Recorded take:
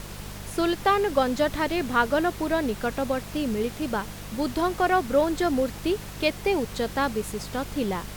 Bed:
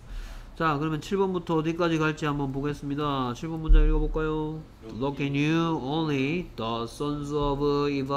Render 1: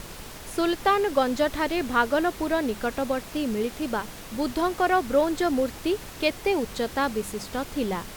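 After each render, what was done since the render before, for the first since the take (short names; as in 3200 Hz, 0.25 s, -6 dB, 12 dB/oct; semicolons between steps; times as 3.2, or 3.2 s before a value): de-hum 50 Hz, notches 4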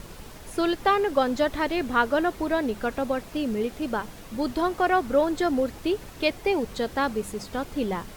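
denoiser 6 dB, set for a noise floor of -41 dBFS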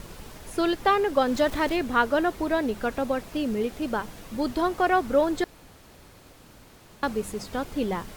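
1.28–1.77 zero-crossing step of -35 dBFS; 5.44–7.03 room tone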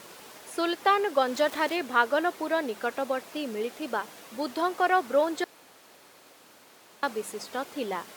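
Bessel high-pass 450 Hz, order 2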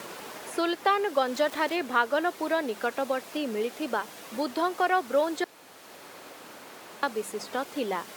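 three-band squash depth 40%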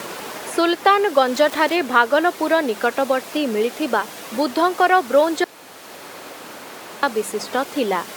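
gain +9.5 dB; limiter -2 dBFS, peak gain reduction 1 dB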